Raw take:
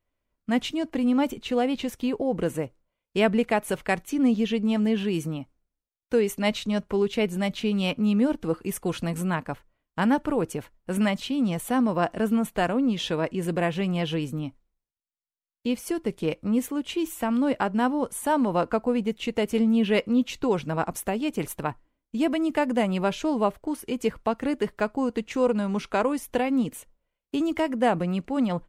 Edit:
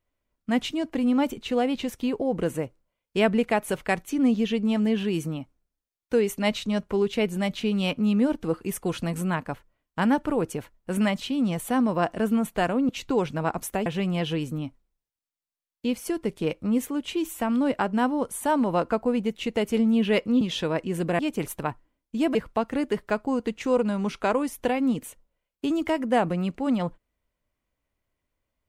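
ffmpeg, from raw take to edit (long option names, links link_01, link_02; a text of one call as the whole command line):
ffmpeg -i in.wav -filter_complex "[0:a]asplit=6[link_01][link_02][link_03][link_04][link_05][link_06];[link_01]atrim=end=12.892[link_07];[link_02]atrim=start=20.218:end=21.192[link_08];[link_03]atrim=start=13.668:end=20.222[link_09];[link_04]atrim=start=12.888:end=13.672[link_10];[link_05]atrim=start=21.188:end=22.352[link_11];[link_06]atrim=start=24.048[link_12];[link_07][link_08]acrossfade=duration=0.004:curve1=hsin:curve2=hsin[link_13];[link_13][link_09]acrossfade=duration=0.004:curve1=hsin:curve2=hsin[link_14];[link_14][link_10]acrossfade=duration=0.004:curve1=hsin:curve2=hsin[link_15];[link_15][link_11]acrossfade=duration=0.004:curve1=hsin:curve2=hsin[link_16];[link_16][link_12]acrossfade=duration=0.004:curve1=hsin:curve2=hsin" out.wav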